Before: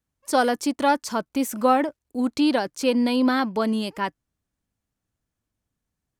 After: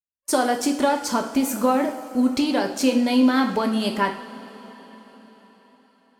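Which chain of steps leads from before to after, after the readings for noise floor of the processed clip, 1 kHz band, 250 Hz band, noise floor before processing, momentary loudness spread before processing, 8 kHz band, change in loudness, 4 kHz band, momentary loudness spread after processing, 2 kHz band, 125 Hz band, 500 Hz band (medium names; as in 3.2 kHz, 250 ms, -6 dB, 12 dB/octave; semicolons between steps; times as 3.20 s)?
-62 dBFS, 0.0 dB, +2.5 dB, -84 dBFS, 7 LU, +5.0 dB, +1.5 dB, +2.0 dB, 7 LU, +0.5 dB, no reading, +0.5 dB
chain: expander -43 dBFS; compression, threshold -23 dBFS, peak gain reduction 9 dB; two-slope reverb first 0.5 s, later 4.9 s, from -18 dB, DRR 2.5 dB; trim +4.5 dB; AAC 96 kbps 44.1 kHz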